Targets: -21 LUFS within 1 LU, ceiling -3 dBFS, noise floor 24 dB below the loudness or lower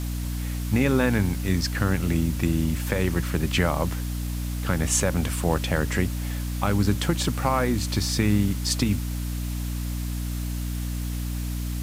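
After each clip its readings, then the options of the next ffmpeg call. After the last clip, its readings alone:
hum 60 Hz; harmonics up to 300 Hz; hum level -26 dBFS; noise floor -29 dBFS; noise floor target -50 dBFS; loudness -25.5 LUFS; peak -7.5 dBFS; loudness target -21.0 LUFS
-> -af "bandreject=f=60:t=h:w=6,bandreject=f=120:t=h:w=6,bandreject=f=180:t=h:w=6,bandreject=f=240:t=h:w=6,bandreject=f=300:t=h:w=6"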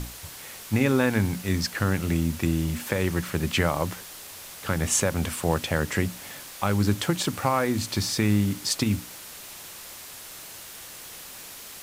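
hum none; noise floor -42 dBFS; noise floor target -50 dBFS
-> -af "afftdn=nr=8:nf=-42"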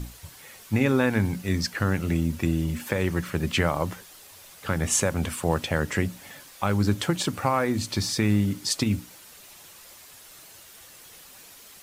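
noise floor -49 dBFS; noise floor target -50 dBFS
-> -af "afftdn=nr=6:nf=-49"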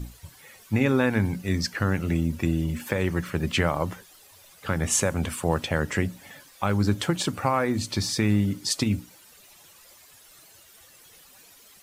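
noise floor -53 dBFS; loudness -26.0 LUFS; peak -8.5 dBFS; loudness target -21.0 LUFS
-> -af "volume=5dB"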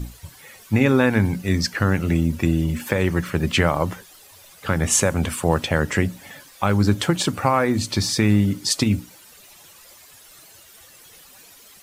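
loudness -21.0 LUFS; peak -3.5 dBFS; noise floor -48 dBFS

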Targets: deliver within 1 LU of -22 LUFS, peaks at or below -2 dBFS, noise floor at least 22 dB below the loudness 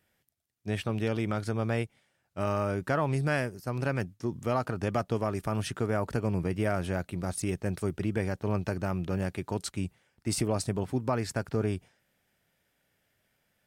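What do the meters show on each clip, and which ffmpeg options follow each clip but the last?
loudness -31.5 LUFS; peak -16.5 dBFS; loudness target -22.0 LUFS
-> -af "volume=9.5dB"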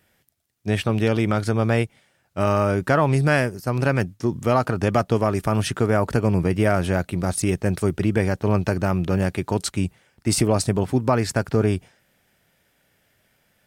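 loudness -22.0 LUFS; peak -7.0 dBFS; noise floor -66 dBFS

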